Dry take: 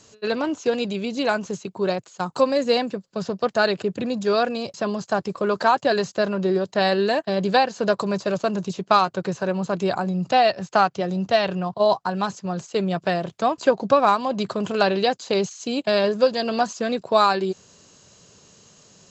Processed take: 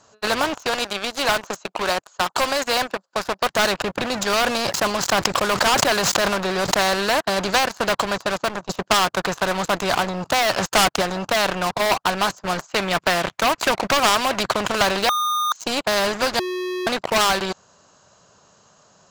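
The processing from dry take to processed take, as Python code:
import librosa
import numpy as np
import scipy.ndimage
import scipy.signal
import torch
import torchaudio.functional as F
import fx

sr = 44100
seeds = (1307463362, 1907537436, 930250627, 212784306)

y = fx.highpass(x, sr, hz=410.0, slope=12, at=(0.65, 3.5))
y = fx.sustainer(y, sr, db_per_s=38.0, at=(4.04, 6.81))
y = fx.leveller(y, sr, passes=2, at=(10.52, 11.02))
y = fx.peak_eq(y, sr, hz=2200.0, db=11.0, octaves=0.77, at=(12.69, 14.41))
y = fx.edit(y, sr, fx.fade_out_to(start_s=7.61, length_s=1.08, floor_db=-9.0),
    fx.bleep(start_s=15.09, length_s=0.43, hz=1220.0, db=-14.5),
    fx.bleep(start_s=16.39, length_s=0.48, hz=365.0, db=-16.0), tone=tone)
y = fx.band_shelf(y, sr, hz=970.0, db=10.5, octaves=1.7)
y = fx.leveller(y, sr, passes=3)
y = fx.spectral_comp(y, sr, ratio=2.0)
y = F.gain(torch.from_numpy(y), -8.5).numpy()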